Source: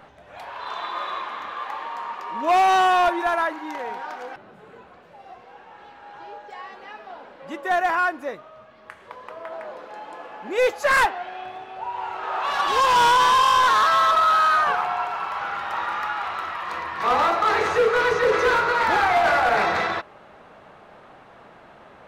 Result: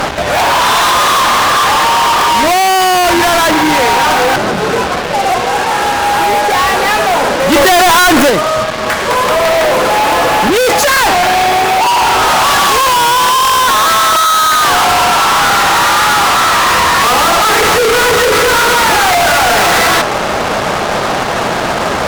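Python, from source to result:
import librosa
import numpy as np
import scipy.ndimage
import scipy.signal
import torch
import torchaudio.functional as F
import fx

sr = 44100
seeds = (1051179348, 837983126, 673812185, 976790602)

y = fx.fuzz(x, sr, gain_db=50.0, gate_db=-52.0)
y = fx.leveller(y, sr, passes=5, at=(7.52, 8.3))
y = y * 10.0 ** (4.5 / 20.0)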